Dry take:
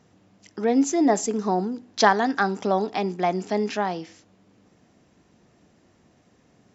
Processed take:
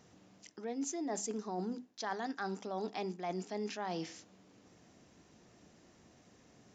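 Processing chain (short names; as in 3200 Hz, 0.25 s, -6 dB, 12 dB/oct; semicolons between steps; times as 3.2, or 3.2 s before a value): high shelf 5500 Hz +9 dB; notches 50/100/150/200/250 Hz; reverse; compressor 12:1, threshold -32 dBFS, peak gain reduction 21.5 dB; reverse; downsampling 16000 Hz; gain -3 dB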